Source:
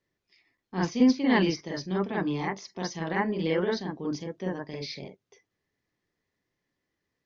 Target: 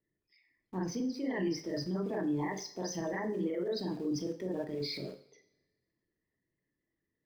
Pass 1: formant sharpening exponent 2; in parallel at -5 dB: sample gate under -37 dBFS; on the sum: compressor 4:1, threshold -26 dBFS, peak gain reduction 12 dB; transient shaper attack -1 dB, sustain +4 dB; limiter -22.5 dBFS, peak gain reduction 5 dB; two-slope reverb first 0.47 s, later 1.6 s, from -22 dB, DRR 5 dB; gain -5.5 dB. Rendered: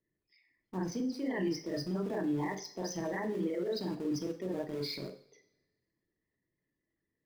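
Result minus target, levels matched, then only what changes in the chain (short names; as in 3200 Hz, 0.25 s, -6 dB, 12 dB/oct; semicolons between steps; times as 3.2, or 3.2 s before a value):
sample gate: distortion +10 dB
change: sample gate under -45 dBFS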